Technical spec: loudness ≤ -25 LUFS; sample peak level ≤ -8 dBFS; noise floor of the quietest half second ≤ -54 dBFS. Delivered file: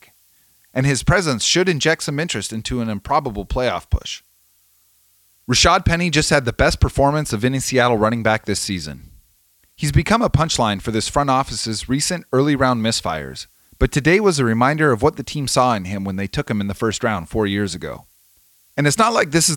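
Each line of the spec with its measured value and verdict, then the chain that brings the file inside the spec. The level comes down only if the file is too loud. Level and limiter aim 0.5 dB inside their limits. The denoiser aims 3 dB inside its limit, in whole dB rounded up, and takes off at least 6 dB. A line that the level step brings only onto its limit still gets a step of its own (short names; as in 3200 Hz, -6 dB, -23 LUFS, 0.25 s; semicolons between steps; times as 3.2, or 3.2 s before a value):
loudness -18.5 LUFS: fail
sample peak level -3.0 dBFS: fail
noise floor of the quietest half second -58 dBFS: OK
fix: gain -7 dB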